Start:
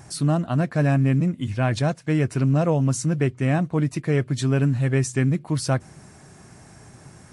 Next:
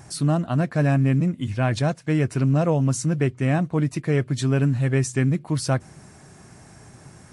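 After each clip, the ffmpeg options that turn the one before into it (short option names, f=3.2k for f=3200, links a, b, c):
-af anull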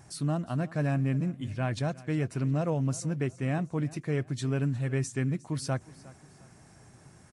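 -af "aecho=1:1:358|716|1074:0.1|0.037|0.0137,volume=-8.5dB"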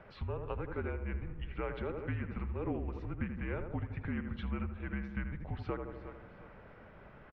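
-filter_complex "[0:a]asplit=2[a][b];[b]adelay=79,lowpass=f=1.4k:p=1,volume=-6dB,asplit=2[c][d];[d]adelay=79,lowpass=f=1.4k:p=1,volume=0.51,asplit=2[e][f];[f]adelay=79,lowpass=f=1.4k:p=1,volume=0.51,asplit=2[g][h];[h]adelay=79,lowpass=f=1.4k:p=1,volume=0.51,asplit=2[i][j];[j]adelay=79,lowpass=f=1.4k:p=1,volume=0.51,asplit=2[k][l];[l]adelay=79,lowpass=f=1.4k:p=1,volume=0.51[m];[a][c][e][g][i][k][m]amix=inputs=7:normalize=0,acompressor=threshold=-35dB:ratio=6,highpass=f=230:t=q:w=0.5412,highpass=f=230:t=q:w=1.307,lowpass=f=3.1k:t=q:w=0.5176,lowpass=f=3.1k:t=q:w=0.7071,lowpass=f=3.1k:t=q:w=1.932,afreqshift=-200,volume=5dB"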